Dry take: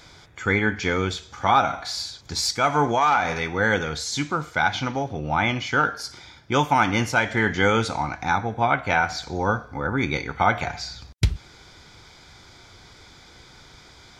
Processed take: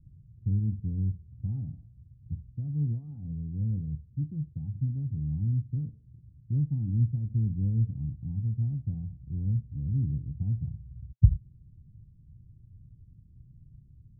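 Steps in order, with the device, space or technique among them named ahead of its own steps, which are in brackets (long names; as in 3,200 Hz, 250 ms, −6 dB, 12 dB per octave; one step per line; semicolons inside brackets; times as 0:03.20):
the neighbour's flat through the wall (low-pass filter 170 Hz 24 dB per octave; parametric band 120 Hz +5 dB 0.62 octaves)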